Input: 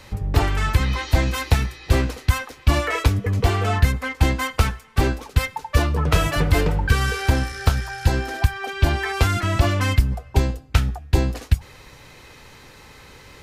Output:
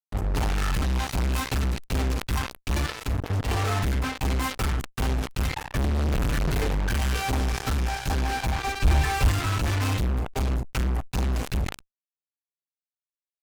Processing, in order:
0:05.62–0:06.46: low-shelf EQ 380 Hz +11 dB
convolution reverb RT60 0.30 s, pre-delay 4 ms, DRR −6.5 dB
0:02.86–0:03.50: output level in coarse steps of 12 dB
fuzz pedal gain 22 dB, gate −20 dBFS
0:08.67–0:09.29: low-shelf EQ 89 Hz +11 dB
level that may fall only so fast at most 140 dB per second
level −9 dB

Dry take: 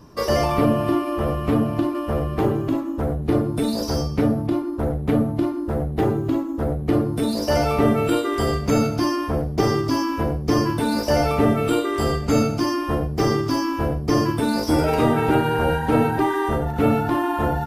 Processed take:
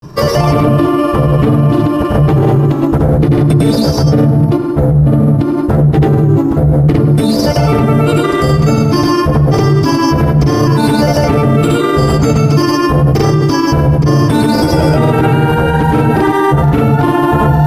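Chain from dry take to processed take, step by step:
parametric band 140 Hz +13 dB 0.31 octaves
granular cloud, pitch spread up and down by 0 semitones
on a send: tape delay 103 ms, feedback 68%, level −13 dB, low-pass 2,900 Hz
on the sum: boost into a limiter +15 dB
level −1 dB

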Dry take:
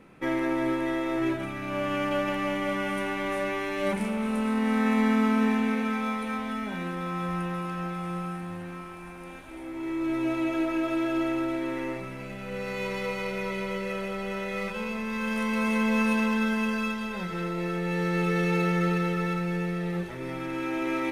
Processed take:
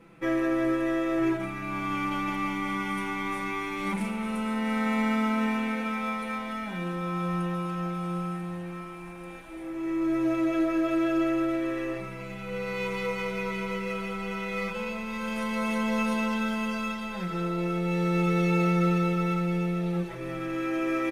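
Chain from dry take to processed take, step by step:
comb filter 6 ms, depth 92%
level −3.5 dB

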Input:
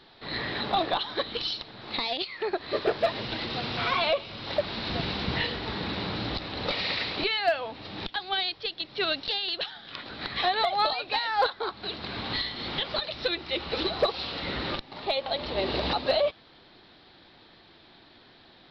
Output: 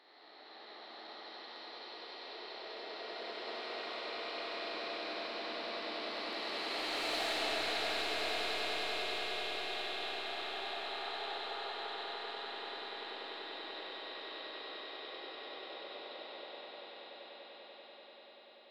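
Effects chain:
spectrum smeared in time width 1,170 ms
source passing by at 0:07.21, 11 m/s, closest 2.4 metres
high-pass filter 320 Hz 24 dB per octave
in parallel at −1.5 dB: compressor whose output falls as the input rises −59 dBFS, ratio −0.5
on the sum: soft clipping −39 dBFS, distortion −10 dB
on a send: echo that builds up and dies away 97 ms, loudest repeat 8, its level −10 dB
on the sum: comb and all-pass reverb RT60 4.2 s, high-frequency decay 0.8×, pre-delay 10 ms, DRR −5 dB

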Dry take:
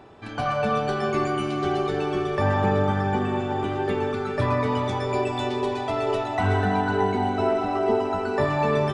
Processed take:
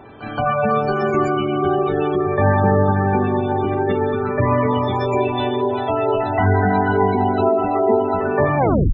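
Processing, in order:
turntable brake at the end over 0.35 s
gate on every frequency bin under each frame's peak −20 dB strong
echo ahead of the sound 173 ms −15 dB
level +6 dB

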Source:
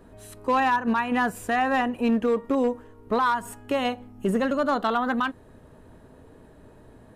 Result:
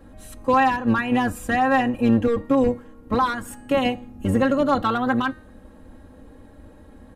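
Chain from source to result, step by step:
sub-octave generator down 1 octave, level +2 dB
comb filter 3.7 ms, depth 86%
hum removal 309.4 Hz, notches 31

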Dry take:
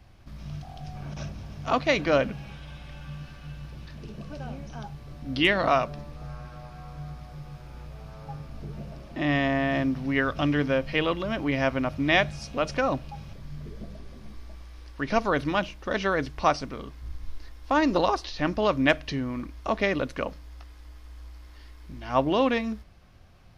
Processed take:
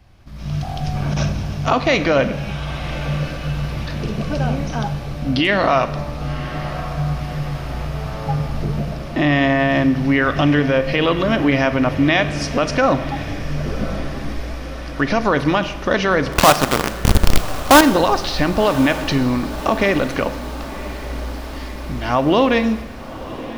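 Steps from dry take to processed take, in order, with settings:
in parallel at +1 dB: downward compressor 16 to 1, threshold −31 dBFS, peak gain reduction 17 dB
on the sum: brickwall limiter −14 dBFS, peak gain reduction 8 dB
automatic gain control gain up to 14.5 dB
0:16.32–0:17.81: log-companded quantiser 2 bits
on a send: feedback delay with all-pass diffusion 1,077 ms, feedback 63%, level −15 dB
on the sum: four-comb reverb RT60 1.2 s, combs from 32 ms, DRR 12 dB
level −4 dB

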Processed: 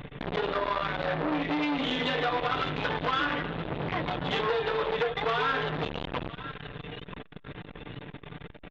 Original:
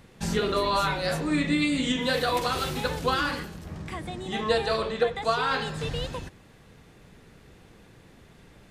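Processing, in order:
comb filter 6.8 ms, depth 91%
dynamic equaliser 180 Hz, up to −5 dB, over −36 dBFS, Q 1.5
in parallel at 0 dB: brickwall limiter −17.5 dBFS, peak gain reduction 7.5 dB
on the sum: downward compressor 16 to 1, threshold −27 dBFS, peak gain reduction 15.5 dB
on a send: feedback echo with a high-pass in the loop 980 ms, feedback 48%, high-pass 1,000 Hz, level −11 dB
on the sum: downsampling to 8,000 Hz
saturating transformer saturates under 1,400 Hz
level +5.5 dB

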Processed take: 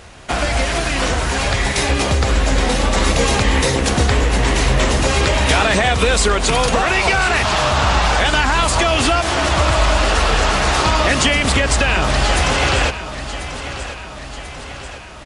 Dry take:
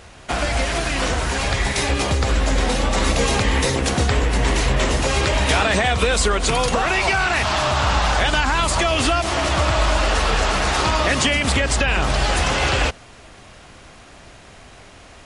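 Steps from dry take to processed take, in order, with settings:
repeating echo 1,040 ms, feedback 56%, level −12.5 dB
level +3 dB

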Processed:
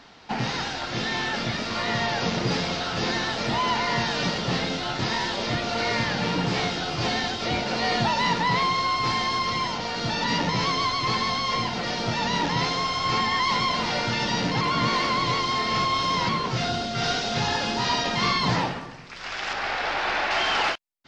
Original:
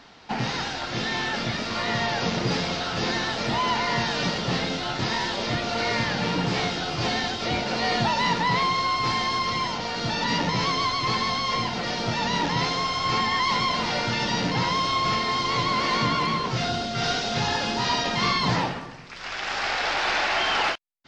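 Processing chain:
0:14.61–0:16.29: reverse
0:19.53–0:20.31: high-shelf EQ 4,800 Hz −11.5 dB

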